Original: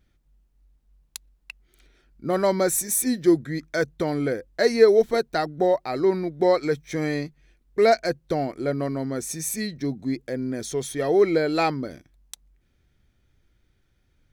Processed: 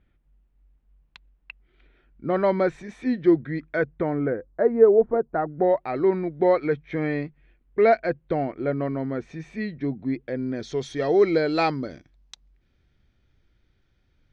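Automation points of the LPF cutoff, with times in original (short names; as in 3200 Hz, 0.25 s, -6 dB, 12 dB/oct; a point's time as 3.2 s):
LPF 24 dB/oct
3.65 s 3000 Hz
4.72 s 1200 Hz
5.29 s 1200 Hz
5.76 s 2900 Hz
10.1 s 2900 Hz
10.92 s 5500 Hz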